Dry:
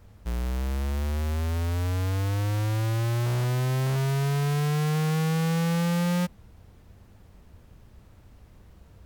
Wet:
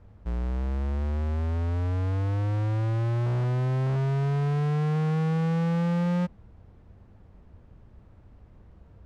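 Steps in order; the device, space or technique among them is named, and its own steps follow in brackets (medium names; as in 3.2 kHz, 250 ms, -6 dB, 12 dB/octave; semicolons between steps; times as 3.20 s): through cloth (low-pass 8.1 kHz 12 dB/octave; treble shelf 2.8 kHz -17 dB)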